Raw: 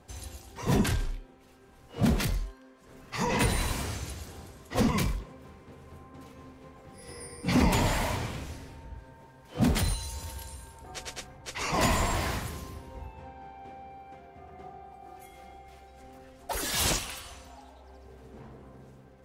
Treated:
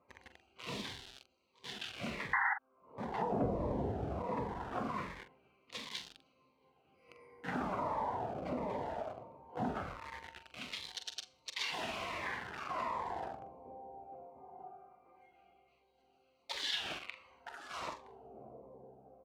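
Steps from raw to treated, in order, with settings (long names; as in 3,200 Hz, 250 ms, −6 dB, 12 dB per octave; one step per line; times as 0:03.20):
adaptive Wiener filter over 25 samples
0:03.32–0:04.22: low-shelf EQ 420 Hz +12 dB
on a send: single-tap delay 968 ms −11 dB
on the sum: treble cut that deepens with the level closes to 1,000 Hz, closed at −25 dBFS
four-comb reverb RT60 0.46 s, combs from 29 ms, DRR 15 dB
in parallel at −4 dB: bit reduction 6 bits
on the sum: LFO wah 0.2 Hz 630–3,800 Hz, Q 2.1
0:02.33–0:02.54: sound drawn into the spectrogram noise 770–2,100 Hz −23 dBFS
double-tracking delay 44 ms −10 dB
downward compressor 2.5 to 1, threshold −39 dBFS, peak gain reduction 13 dB
phaser whose notches keep moving one way falling 1.4 Hz
level +6 dB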